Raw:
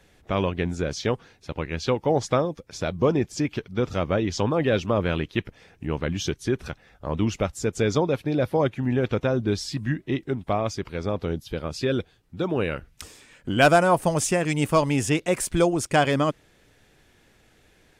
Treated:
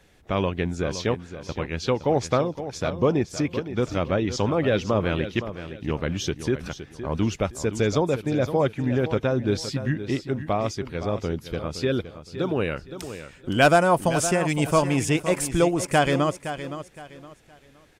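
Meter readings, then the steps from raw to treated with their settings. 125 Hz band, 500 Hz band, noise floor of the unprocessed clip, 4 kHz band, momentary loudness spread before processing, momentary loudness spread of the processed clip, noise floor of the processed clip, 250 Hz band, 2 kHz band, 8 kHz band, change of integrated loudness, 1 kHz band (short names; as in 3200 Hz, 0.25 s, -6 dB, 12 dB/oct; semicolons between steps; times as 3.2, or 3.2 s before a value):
+0.5 dB, +0.5 dB, -60 dBFS, +0.5 dB, 10 LU, 11 LU, -53 dBFS, +0.5 dB, +0.5 dB, +0.5 dB, 0.0 dB, +0.5 dB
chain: feedback echo 0.516 s, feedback 29%, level -11.5 dB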